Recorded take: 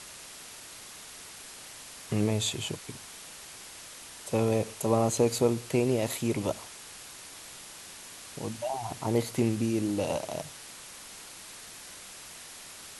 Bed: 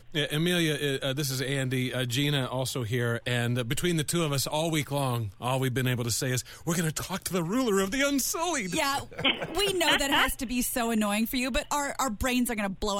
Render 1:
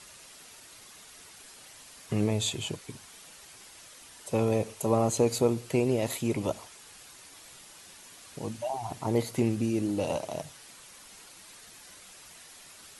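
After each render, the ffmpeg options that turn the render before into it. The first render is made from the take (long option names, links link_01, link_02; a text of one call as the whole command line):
ffmpeg -i in.wav -af "afftdn=noise_reduction=7:noise_floor=-47" out.wav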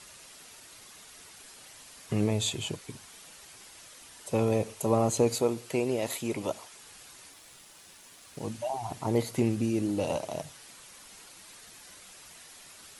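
ffmpeg -i in.wav -filter_complex "[0:a]asettb=1/sr,asplit=3[link_01][link_02][link_03];[link_01]atrim=end=5.354[link_04];[link_02]atrim=start=5.35:end=6.73,asetpts=PTS-STARTPTS,afade=type=in:duration=0.004:curve=qsin,afade=type=out:start_time=1.376:duration=0.004:curve=qsin,lowshelf=frequency=190:gain=-10.5[link_05];[link_03]atrim=start=6.726[link_06];[link_04][link_05]acrossfade=duration=0.004:curve1=hsin:curve2=qsin[link_07];[link_07][link_06]acrossfade=duration=0.004:curve1=qsin:curve2=hsin,asettb=1/sr,asplit=3[link_08][link_09][link_10];[link_08]atrim=end=7.324[link_11];[link_09]atrim=start=7.32:end=8.47,asetpts=PTS-STARTPTS,afade=type=in:duration=0.004:curve=qsin,afade=type=out:start_time=1.146:duration=0.004:curve=qsin,aeval=exprs='sgn(val(0))*max(abs(val(0))-0.001,0)':channel_layout=same[link_12];[link_10]atrim=start=8.466[link_13];[link_11][link_12]acrossfade=duration=0.004:curve1=hsin:curve2=qsin[link_14];[link_14][link_13]acrossfade=duration=0.004:curve1=qsin:curve2=hsin" out.wav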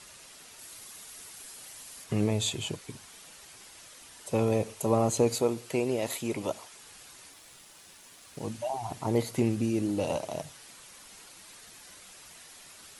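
ffmpeg -i in.wav -filter_complex "[0:a]asettb=1/sr,asplit=3[link_01][link_02][link_03];[link_01]atrim=end=0.594[link_04];[link_02]atrim=start=0.59:end=2.04,asetpts=PTS-STARTPTS,afade=type=in:duration=0.004:curve=qsin,afade=type=out:start_time=1.446:duration=0.004:curve=qsin,highshelf=frequency=8800:gain=11[link_05];[link_03]atrim=start=2.036[link_06];[link_04][link_05]acrossfade=duration=0.004:curve1=hsin:curve2=qsin[link_07];[link_07][link_06]acrossfade=duration=0.004:curve1=qsin:curve2=hsin" out.wav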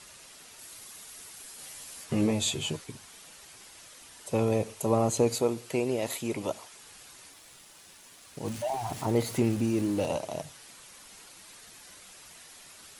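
ffmpeg -i in.wav -filter_complex "[0:a]asettb=1/sr,asplit=3[link_01][link_02][link_03];[link_01]atrim=end=1.574[link_04];[link_02]atrim=start=1.57:end=2.84,asetpts=PTS-STARTPTS,afade=type=in:duration=0.004:curve=qsin,afade=type=out:start_time=1.266:duration=0.004:curve=qsin,asplit=2[link_05][link_06];[link_06]adelay=13,volume=-2.5dB[link_07];[link_05][link_07]amix=inputs=2:normalize=0,atrim=end_sample=56007[link_08];[link_03]atrim=start=2.836[link_09];[link_04][link_08]acrossfade=duration=0.004:curve1=hsin:curve2=qsin[link_10];[link_10][link_09]acrossfade=duration=0.004:curve1=qsin:curve2=hsin,asettb=1/sr,asplit=3[link_11][link_12][link_13];[link_11]atrim=end=8.454[link_14];[link_12]atrim=start=8.45:end=10.06,asetpts=PTS-STARTPTS,afade=type=in:duration=0.004:curve=qsin,afade=type=out:start_time=1.606:duration=0.004:curve=qsin,aeval=exprs='val(0)+0.5*0.0112*sgn(val(0))':channel_layout=same[link_15];[link_13]atrim=start=10.056[link_16];[link_14][link_15]acrossfade=duration=0.004:curve1=hsin:curve2=qsin[link_17];[link_17][link_16]acrossfade=duration=0.004:curve1=qsin:curve2=hsin" out.wav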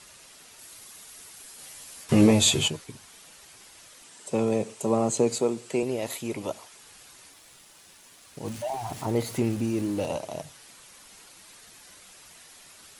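ffmpeg -i in.wav -filter_complex "[0:a]asettb=1/sr,asplit=3[link_01][link_02][link_03];[link_01]atrim=end=4.044[link_04];[link_02]atrim=start=4.04:end=5.83,asetpts=PTS-STARTPTS,afade=type=in:duration=0.004:curve=qsin,afade=type=out:start_time=1.786:duration=0.004:curve=qsin,highpass=frequency=120:width=0.5412,highpass=frequency=120:width=1.3066,equalizer=frequency=210:width_type=q:width=4:gain=4,equalizer=frequency=390:width_type=q:width=4:gain=4,equalizer=frequency=7800:width_type=q:width=4:gain=6,lowpass=frequency=9900:width=0.5412,lowpass=frequency=9900:width=1.3066[link_05];[link_03]atrim=start=5.826[link_06];[link_04][link_05]acrossfade=duration=0.004:curve1=hsin:curve2=qsin[link_07];[link_07][link_06]acrossfade=duration=0.004:curve1=qsin:curve2=hsin,asplit=3[link_08][link_09][link_10];[link_08]atrim=end=2.092[link_11];[link_09]atrim=start=2.088:end=2.682,asetpts=PTS-STARTPTS,volume=8.5dB[link_12];[link_10]atrim=start=2.678[link_13];[link_11][link_12]acrossfade=duration=0.004:curve1=hsin:curve2=hsin[link_14];[link_14][link_13]acrossfade=duration=0.004:curve1=hsin:curve2=hsin" out.wav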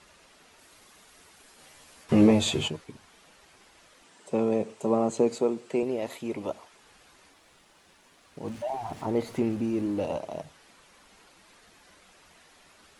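ffmpeg -i in.wav -af "lowpass=frequency=1900:poles=1,equalizer=frequency=120:width=3.8:gain=-9" out.wav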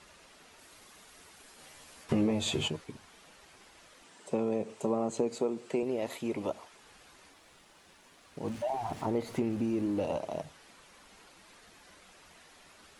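ffmpeg -i in.wav -af "acompressor=threshold=-28dB:ratio=3" out.wav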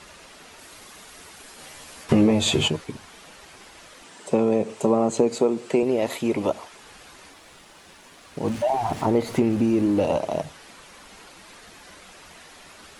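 ffmpeg -i in.wav -af "volume=10.5dB" out.wav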